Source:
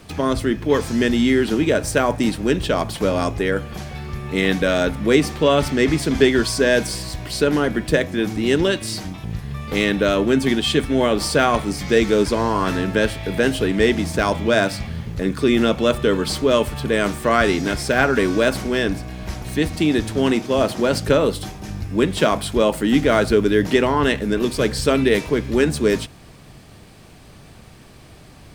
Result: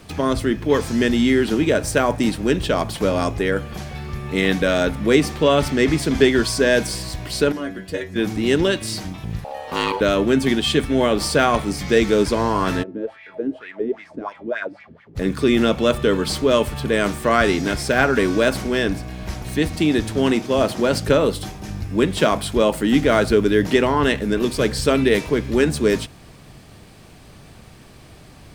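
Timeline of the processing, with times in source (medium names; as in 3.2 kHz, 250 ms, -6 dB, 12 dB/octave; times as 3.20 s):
7.52–8.16 s: inharmonic resonator 93 Hz, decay 0.26 s, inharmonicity 0.002
9.44–10.01 s: ring modulator 680 Hz
12.82–15.15 s: wah-wah 1.6 Hz -> 5.6 Hz 270–2200 Hz, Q 4.9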